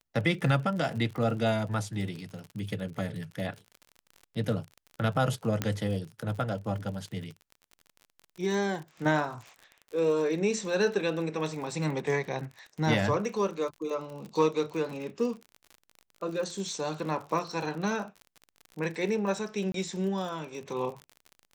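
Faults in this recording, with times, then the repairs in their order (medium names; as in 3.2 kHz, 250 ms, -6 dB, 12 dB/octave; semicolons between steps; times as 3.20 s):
crackle 45 per s -37 dBFS
5.62 s: pop -13 dBFS
19.72–19.74 s: dropout 23 ms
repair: de-click; interpolate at 19.72 s, 23 ms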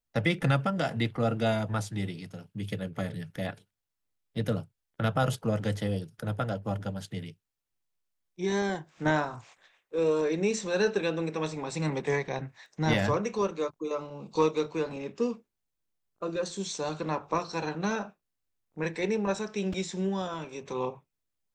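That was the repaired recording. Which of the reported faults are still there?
nothing left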